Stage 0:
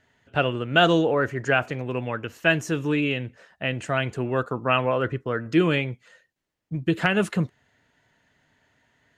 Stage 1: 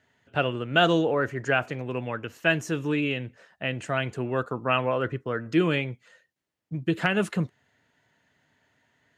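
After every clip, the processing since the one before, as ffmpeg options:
ffmpeg -i in.wav -af "highpass=77,volume=-2.5dB" out.wav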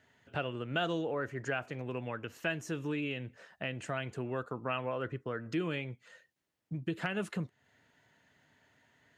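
ffmpeg -i in.wav -af "acompressor=threshold=-40dB:ratio=2" out.wav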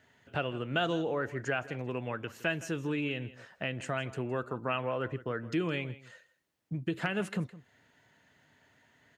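ffmpeg -i in.wav -af "aecho=1:1:163:0.133,volume=2.5dB" out.wav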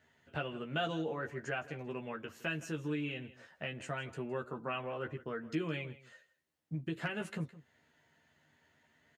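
ffmpeg -i in.wav -filter_complex "[0:a]asplit=2[link_01][link_02];[link_02]adelay=13,volume=-3.5dB[link_03];[link_01][link_03]amix=inputs=2:normalize=0,volume=-6.5dB" out.wav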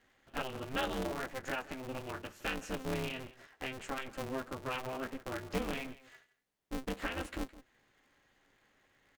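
ffmpeg -i in.wav -af "aeval=exprs='val(0)*sgn(sin(2*PI*130*n/s))':channel_layout=same" out.wav

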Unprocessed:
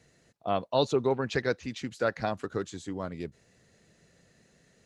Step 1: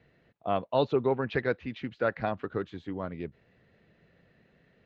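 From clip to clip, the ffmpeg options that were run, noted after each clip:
ffmpeg -i in.wav -af "lowpass=frequency=3200:width=0.5412,lowpass=frequency=3200:width=1.3066" out.wav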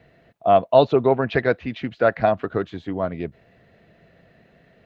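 ffmpeg -i in.wav -af "equalizer=frequency=670:width_type=o:width=0.22:gain=9.5,volume=8dB" out.wav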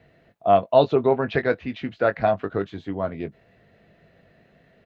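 ffmpeg -i in.wav -filter_complex "[0:a]asplit=2[link_01][link_02];[link_02]adelay=20,volume=-10dB[link_03];[link_01][link_03]amix=inputs=2:normalize=0,volume=-2.5dB" out.wav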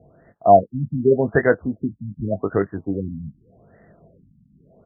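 ffmpeg -i in.wav -af "afftfilt=real='re*lt(b*sr/1024,250*pow(2100/250,0.5+0.5*sin(2*PI*0.85*pts/sr)))':imag='im*lt(b*sr/1024,250*pow(2100/250,0.5+0.5*sin(2*PI*0.85*pts/sr)))':win_size=1024:overlap=0.75,volume=5.5dB" out.wav

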